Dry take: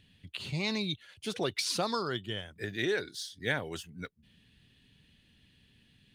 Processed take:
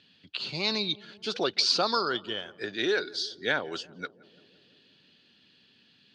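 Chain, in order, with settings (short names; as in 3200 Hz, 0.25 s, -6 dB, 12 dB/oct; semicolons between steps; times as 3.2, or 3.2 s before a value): speaker cabinet 270–5900 Hz, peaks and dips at 1400 Hz +5 dB, 2000 Hz -6 dB, 4600 Hz +8 dB; darkening echo 0.172 s, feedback 75%, low-pass 1000 Hz, level -20 dB; gain +4.5 dB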